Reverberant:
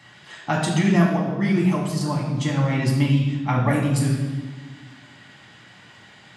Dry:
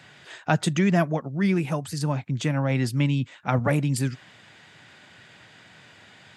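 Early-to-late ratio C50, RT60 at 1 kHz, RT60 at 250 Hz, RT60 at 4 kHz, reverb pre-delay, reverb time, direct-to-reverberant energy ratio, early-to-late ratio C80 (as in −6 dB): 3.5 dB, 1.3 s, 2.1 s, 1.2 s, 4 ms, 1.4 s, −3.0 dB, 5.5 dB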